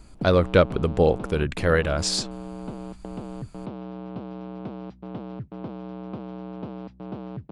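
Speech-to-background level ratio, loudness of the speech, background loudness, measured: 14.5 dB, −22.5 LKFS, −37.0 LKFS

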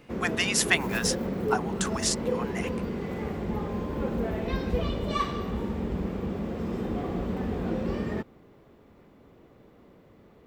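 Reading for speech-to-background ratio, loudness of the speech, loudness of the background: 2.5 dB, −28.5 LKFS, −31.0 LKFS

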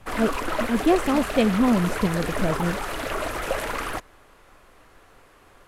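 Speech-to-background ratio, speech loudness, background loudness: 5.5 dB, −23.5 LKFS, −29.0 LKFS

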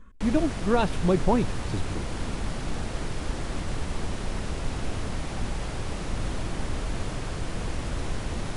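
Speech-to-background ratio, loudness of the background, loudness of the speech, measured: 6.5 dB, −33.5 LKFS, −27.0 LKFS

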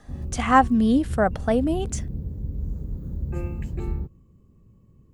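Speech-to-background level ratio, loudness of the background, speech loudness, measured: 11.0 dB, −32.5 LKFS, −21.5 LKFS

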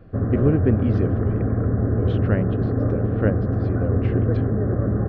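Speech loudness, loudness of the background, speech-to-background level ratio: −27.0 LKFS, −22.0 LKFS, −5.0 dB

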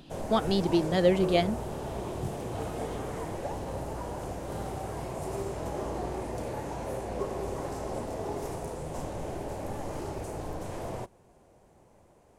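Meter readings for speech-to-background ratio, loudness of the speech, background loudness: 9.5 dB, −26.5 LKFS, −36.0 LKFS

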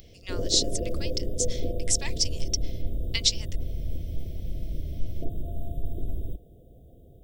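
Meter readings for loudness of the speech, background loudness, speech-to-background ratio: −28.0 LKFS, −35.5 LKFS, 7.5 dB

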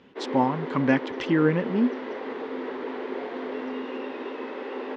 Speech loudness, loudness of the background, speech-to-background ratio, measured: −25.0 LKFS, −34.0 LKFS, 9.0 dB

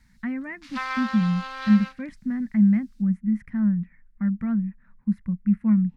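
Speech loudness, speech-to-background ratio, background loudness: −24.5 LKFS, 8.5 dB, −33.0 LKFS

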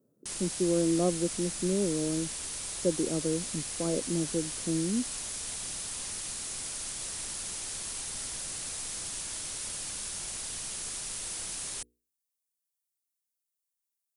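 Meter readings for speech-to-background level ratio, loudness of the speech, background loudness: 3.0 dB, −31.5 LKFS, −34.5 LKFS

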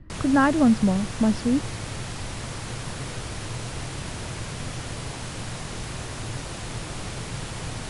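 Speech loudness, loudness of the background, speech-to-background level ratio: −22.0 LKFS, −33.5 LKFS, 11.5 dB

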